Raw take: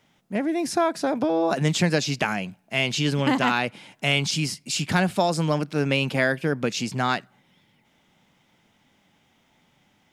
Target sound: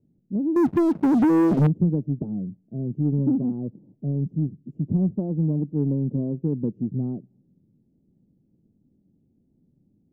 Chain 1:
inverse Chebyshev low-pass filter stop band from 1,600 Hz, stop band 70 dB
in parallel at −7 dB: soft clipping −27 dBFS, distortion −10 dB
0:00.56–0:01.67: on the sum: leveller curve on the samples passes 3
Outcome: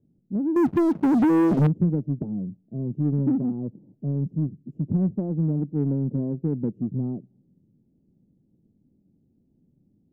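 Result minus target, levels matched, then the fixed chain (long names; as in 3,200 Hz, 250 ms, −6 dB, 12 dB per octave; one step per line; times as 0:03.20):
soft clipping: distortion +6 dB
inverse Chebyshev low-pass filter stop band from 1,600 Hz, stop band 70 dB
in parallel at −7 dB: soft clipping −20.5 dBFS, distortion −16 dB
0:00.56–0:01.67: on the sum: leveller curve on the samples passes 3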